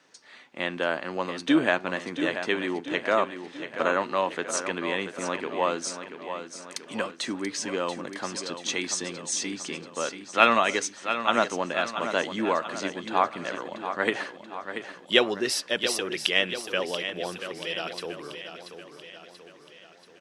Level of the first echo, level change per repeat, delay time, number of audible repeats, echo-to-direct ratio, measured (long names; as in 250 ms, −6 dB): −9.5 dB, −5.5 dB, 684 ms, 5, −8.0 dB